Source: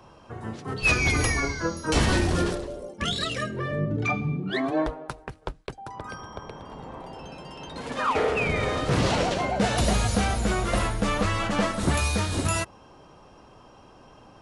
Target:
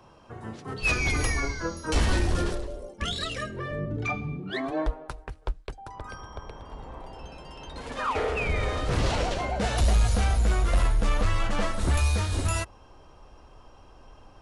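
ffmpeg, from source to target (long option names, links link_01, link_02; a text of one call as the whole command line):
ffmpeg -i in.wav -af "asubboost=boost=6.5:cutoff=60,asoftclip=type=tanh:threshold=-10dB,volume=-3dB" out.wav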